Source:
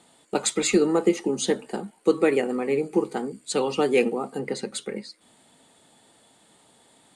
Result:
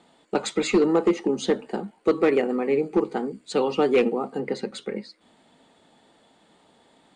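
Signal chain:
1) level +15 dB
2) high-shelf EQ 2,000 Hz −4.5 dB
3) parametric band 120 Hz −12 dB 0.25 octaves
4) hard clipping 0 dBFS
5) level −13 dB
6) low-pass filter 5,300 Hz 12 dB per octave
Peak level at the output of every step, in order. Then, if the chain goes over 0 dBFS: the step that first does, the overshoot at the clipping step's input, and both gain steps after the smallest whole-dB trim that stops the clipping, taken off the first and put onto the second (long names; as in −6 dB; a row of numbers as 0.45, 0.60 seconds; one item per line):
+7.0, +6.5, +6.5, 0.0, −13.0, −12.5 dBFS
step 1, 6.5 dB
step 1 +8 dB, step 5 −6 dB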